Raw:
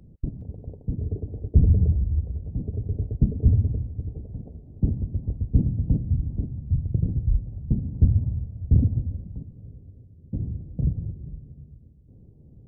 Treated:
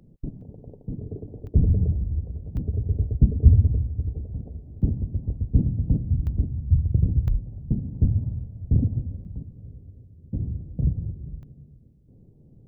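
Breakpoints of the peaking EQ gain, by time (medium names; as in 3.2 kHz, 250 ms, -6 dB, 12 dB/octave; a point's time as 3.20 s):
peaking EQ 68 Hz 0.9 oct
-14.5 dB
from 1.47 s -3.5 dB
from 2.57 s +6.5 dB
from 4.82 s +0.5 dB
from 6.27 s +7.5 dB
from 7.28 s -4.5 dB
from 9.25 s +2 dB
from 11.43 s -8 dB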